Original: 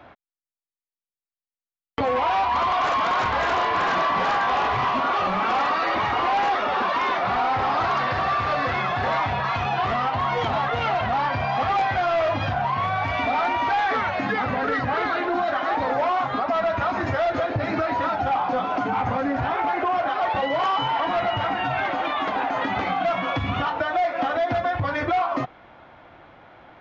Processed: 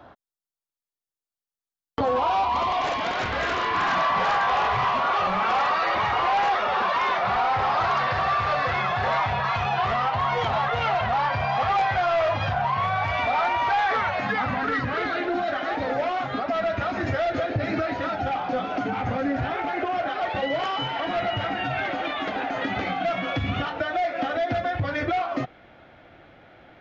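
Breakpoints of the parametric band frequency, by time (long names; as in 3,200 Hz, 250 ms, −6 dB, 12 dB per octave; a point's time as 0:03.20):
parametric band −11 dB 0.55 octaves
0:01.99 2,300 Hz
0:03.56 830 Hz
0:04.19 280 Hz
0:14.21 280 Hz
0:15.06 1,000 Hz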